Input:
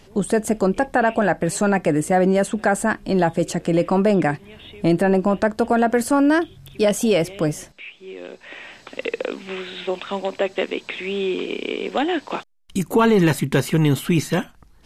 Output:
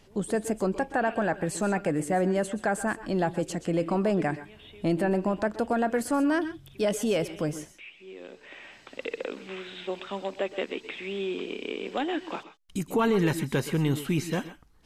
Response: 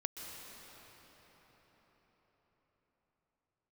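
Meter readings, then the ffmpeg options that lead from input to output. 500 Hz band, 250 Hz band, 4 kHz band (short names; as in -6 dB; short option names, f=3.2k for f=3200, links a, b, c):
-8.0 dB, -8.0 dB, -8.0 dB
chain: -filter_complex "[1:a]atrim=start_sample=2205,atrim=end_sample=6174[a];[0:a][a]afir=irnorm=-1:irlink=0,volume=-6dB"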